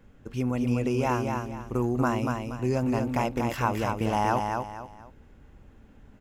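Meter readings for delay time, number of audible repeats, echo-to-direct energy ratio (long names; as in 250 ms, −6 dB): 237 ms, 3, −4.0 dB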